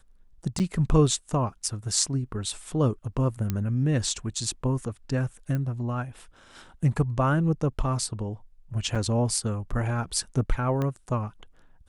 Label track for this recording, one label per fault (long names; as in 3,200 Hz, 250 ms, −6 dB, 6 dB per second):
0.590000	0.600000	drop-out 8.4 ms
3.500000	3.500000	click −14 dBFS
5.550000	5.550000	click −19 dBFS
8.950000	8.960000	drop-out 5.4 ms
10.820000	10.820000	click −17 dBFS